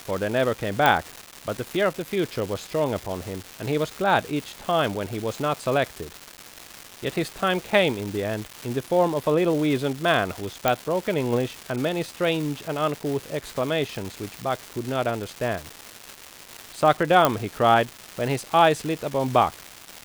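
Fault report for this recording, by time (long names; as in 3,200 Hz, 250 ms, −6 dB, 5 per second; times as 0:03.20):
surface crackle 560 per second −28 dBFS
0:00.86: click −5 dBFS
0:10.68: click −5 dBFS
0:17.25: click −4 dBFS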